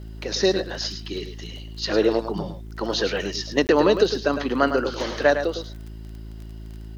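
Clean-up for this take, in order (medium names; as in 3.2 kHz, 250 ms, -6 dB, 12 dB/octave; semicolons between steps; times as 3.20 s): de-click; de-hum 54.4 Hz, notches 7; interpolate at 3.67 s, 19 ms; inverse comb 106 ms -9 dB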